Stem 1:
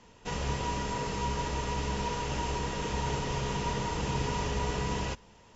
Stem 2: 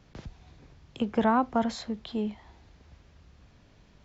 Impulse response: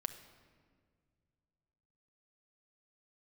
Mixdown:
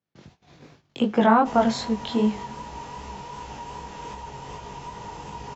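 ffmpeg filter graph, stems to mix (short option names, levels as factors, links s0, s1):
-filter_complex "[0:a]equalizer=f=860:t=o:w=0.48:g=10,alimiter=limit=0.075:level=0:latency=1:release=253,adelay=1200,volume=0.794[s0];[1:a]highpass=160,dynaudnorm=f=220:g=3:m=5.01,volume=0.596,asplit=2[s1][s2];[s2]volume=0.473[s3];[2:a]atrim=start_sample=2205[s4];[s3][s4]afir=irnorm=-1:irlink=0[s5];[s0][s1][s5]amix=inputs=3:normalize=0,agate=range=0.0794:threshold=0.00501:ratio=16:detection=peak,flanger=delay=18:depth=4.6:speed=2.6"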